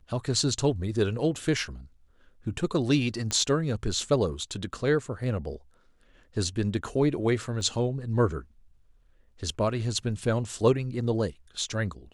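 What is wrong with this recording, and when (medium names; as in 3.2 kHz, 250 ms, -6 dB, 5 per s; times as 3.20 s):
3.31 s: pop -14 dBFS
7.61 s: dropout 2 ms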